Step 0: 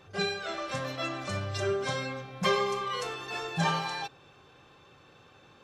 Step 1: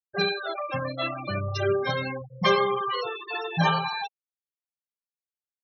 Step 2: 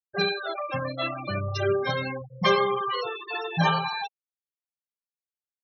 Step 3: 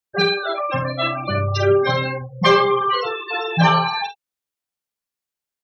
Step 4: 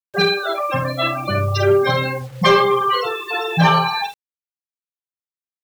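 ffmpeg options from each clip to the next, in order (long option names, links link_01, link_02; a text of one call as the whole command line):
ffmpeg -i in.wav -af "bandreject=frequency=47.14:width_type=h:width=4,bandreject=frequency=94.28:width_type=h:width=4,bandreject=frequency=141.42:width_type=h:width=4,bandreject=frequency=188.56:width_type=h:width=4,bandreject=frequency=235.7:width_type=h:width=4,bandreject=frequency=282.84:width_type=h:width=4,bandreject=frequency=329.98:width_type=h:width=4,bandreject=frequency=377.12:width_type=h:width=4,bandreject=frequency=424.26:width_type=h:width=4,bandreject=frequency=471.4:width_type=h:width=4,bandreject=frequency=518.54:width_type=h:width=4,bandreject=frequency=565.68:width_type=h:width=4,afftfilt=real='re*gte(hypot(re,im),0.0355)':imag='im*gte(hypot(re,im),0.0355)':win_size=1024:overlap=0.75,volume=5.5dB" out.wav
ffmpeg -i in.wav -af anull out.wav
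ffmpeg -i in.wav -filter_complex "[0:a]acontrast=90,asplit=2[link_01][link_02];[link_02]aecho=0:1:48|70:0.398|0.126[link_03];[link_01][link_03]amix=inputs=2:normalize=0" out.wav
ffmpeg -i in.wav -filter_complex "[0:a]asplit=2[link_01][link_02];[link_02]volume=11.5dB,asoftclip=hard,volume=-11.5dB,volume=-7.5dB[link_03];[link_01][link_03]amix=inputs=2:normalize=0,acrusher=bits=6:mix=0:aa=0.000001,volume=-1.5dB" out.wav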